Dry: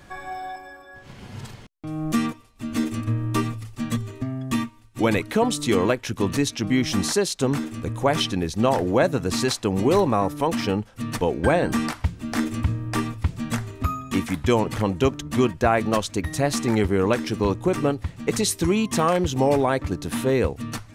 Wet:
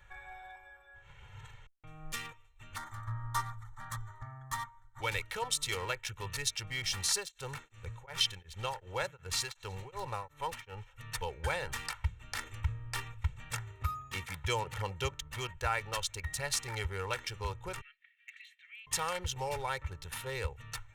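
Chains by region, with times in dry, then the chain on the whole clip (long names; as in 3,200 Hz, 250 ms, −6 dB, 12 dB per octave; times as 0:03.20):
0:02.76–0:05.02: parametric band 1,000 Hz +11 dB 2.3 octaves + phaser with its sweep stopped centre 1,100 Hz, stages 4
0:07.14–0:10.93: delay with a high-pass on its return 95 ms, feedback 78%, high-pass 2,100 Hz, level −18.5 dB + tremolo along a rectified sine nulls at 2.7 Hz
0:13.53–0:15.15: high-pass filter 190 Hz 6 dB per octave + low-shelf EQ 420 Hz +8.5 dB
0:17.81–0:18.87: Butterworth high-pass 1,800 Hz 48 dB per octave + high-frequency loss of the air 490 metres
whole clip: adaptive Wiener filter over 9 samples; guitar amp tone stack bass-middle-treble 10-0-10; comb filter 2.2 ms, depth 66%; level −3 dB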